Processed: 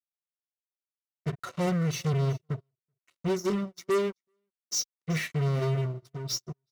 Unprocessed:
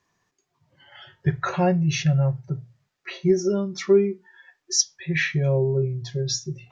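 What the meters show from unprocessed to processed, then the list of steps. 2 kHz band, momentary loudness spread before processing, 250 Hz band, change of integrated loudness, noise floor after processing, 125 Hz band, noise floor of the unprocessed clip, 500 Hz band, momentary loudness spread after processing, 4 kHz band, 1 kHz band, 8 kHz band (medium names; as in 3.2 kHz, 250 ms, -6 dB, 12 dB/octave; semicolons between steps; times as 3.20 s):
-9.0 dB, 11 LU, -6.5 dB, -7.0 dB, under -85 dBFS, -6.0 dB, -78 dBFS, -8.5 dB, 9 LU, -7.0 dB, -5.5 dB, no reading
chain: tone controls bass +5 dB, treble +8 dB; flange 0.63 Hz, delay 3.5 ms, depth 4.5 ms, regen +55%; fuzz box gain 29 dB, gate -35 dBFS; comb of notches 830 Hz; on a send: delay 381 ms -20.5 dB; on the sum: upward expansion 2.5:1, over -37 dBFS; trim -8.5 dB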